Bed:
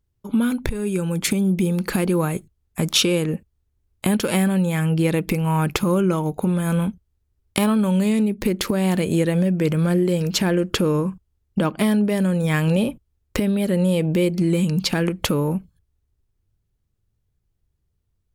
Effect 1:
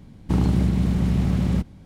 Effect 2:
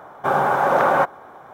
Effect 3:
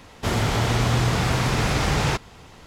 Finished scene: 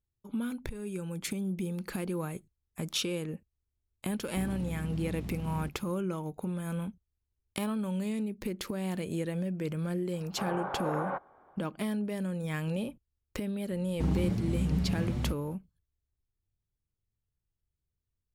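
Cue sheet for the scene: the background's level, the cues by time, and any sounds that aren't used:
bed -14 dB
4.07 add 1 -13 dB + compressor, threshold -21 dBFS
10.13 add 2 -16 dB + air absorption 400 m
13.7 add 1 -7 dB + endless flanger 6.6 ms +1.5 Hz
not used: 3

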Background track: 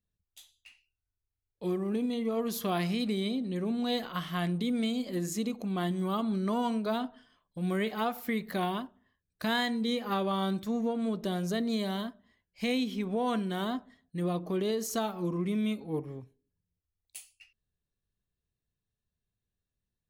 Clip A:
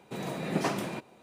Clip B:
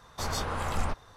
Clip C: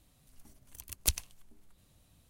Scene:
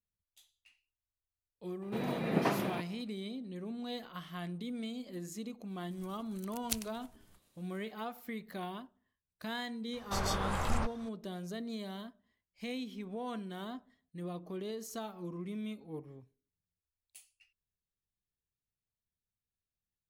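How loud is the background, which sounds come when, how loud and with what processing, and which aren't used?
background track -10 dB
1.81 add A -1 dB, fades 0.02 s + bell 7400 Hz -12.5 dB 1 oct
5.64 add C -7.5 dB, fades 0.10 s + spectral limiter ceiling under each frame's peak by 16 dB
9.93 add B -2.5 dB

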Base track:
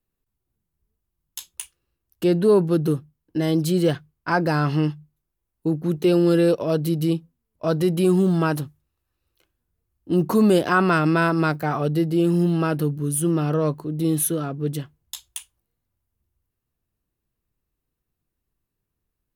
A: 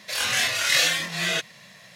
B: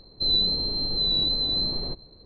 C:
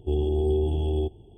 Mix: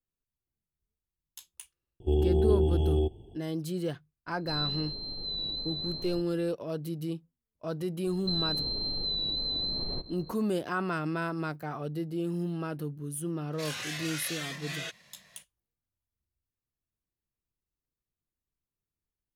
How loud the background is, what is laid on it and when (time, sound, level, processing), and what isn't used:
base track -13 dB
2 add C -0.5 dB
4.27 add B -11 dB + stuck buffer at 1.77
8.07 add B + compressor, threshold -29 dBFS
13.5 add A -11 dB, fades 0.05 s + compressor, threshold -22 dBFS

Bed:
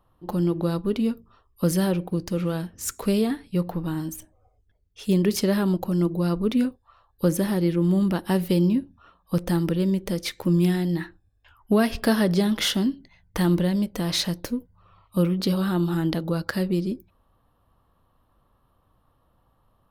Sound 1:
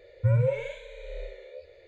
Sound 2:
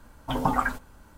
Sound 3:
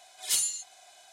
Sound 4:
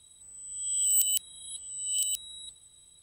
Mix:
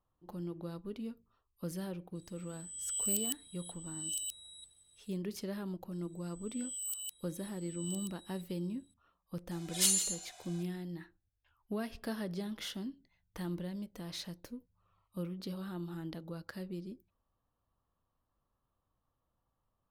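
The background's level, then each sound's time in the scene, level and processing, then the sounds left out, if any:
bed -18 dB
2.15 add 4 -9 dB
5.92 add 4 -15 dB
9.51 add 3 -1.5 dB + echo 0.162 s -11.5 dB
not used: 1, 2

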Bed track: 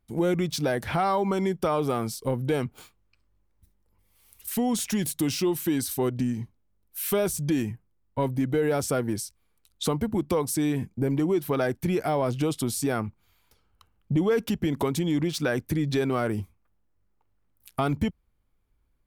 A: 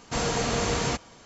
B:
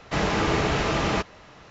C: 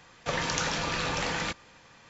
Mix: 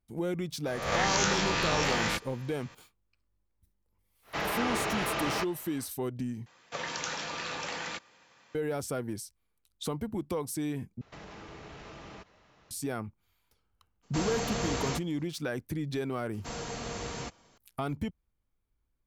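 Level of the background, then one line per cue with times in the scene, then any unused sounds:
bed track -8 dB
0.66 add C -1 dB + spectral swells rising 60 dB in 0.76 s
4.22 add B -11 dB, fades 0.10 s + overdrive pedal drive 13 dB, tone 4200 Hz, clips at -9.5 dBFS
6.46 replace with C -5.5 dB + HPF 310 Hz 6 dB/oct
11.01 replace with B -14 dB + compressor 5:1, threshold -30 dBFS
14.02 add A -6.5 dB, fades 0.02 s + gate -43 dBFS, range -9 dB
16.33 add A -11.5 dB

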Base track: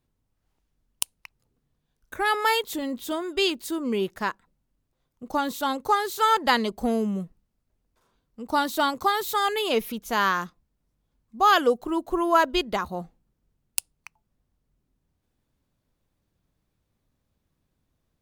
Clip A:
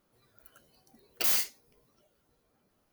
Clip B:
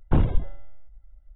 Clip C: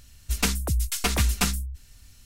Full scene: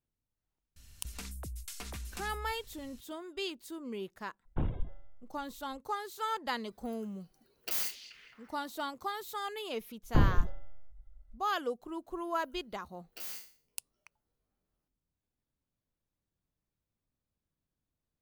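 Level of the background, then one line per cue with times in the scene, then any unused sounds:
base track -14 dB
0.76 add C -5 dB + compressor, threshold -35 dBFS
4.45 add B -13 dB
6.47 add A -7 dB + delay with a stepping band-pass 0.215 s, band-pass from 3500 Hz, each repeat -0.7 oct, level -7 dB
10.03 add B -5 dB
11.96 add A -17.5 dB + spectral trails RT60 0.44 s

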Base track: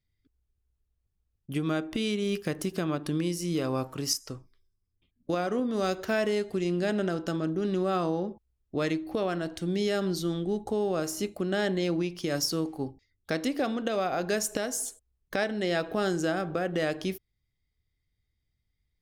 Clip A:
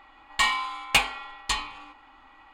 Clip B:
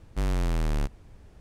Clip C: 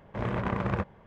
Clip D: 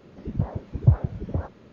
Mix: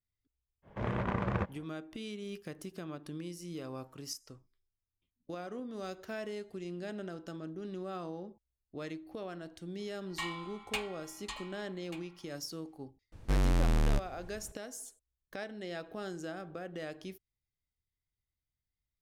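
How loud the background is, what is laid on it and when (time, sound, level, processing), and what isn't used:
base track -13 dB
0.62 add C -3.5 dB, fades 0.05 s
9.79 add A -16 dB + echo 1.187 s -14.5 dB
13.12 add B -1 dB
not used: D

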